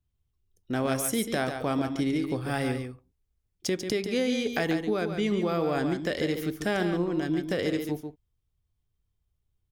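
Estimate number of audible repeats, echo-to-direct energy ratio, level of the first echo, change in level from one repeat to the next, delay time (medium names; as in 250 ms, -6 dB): 1, -7.5 dB, -7.5 dB, no regular repeats, 142 ms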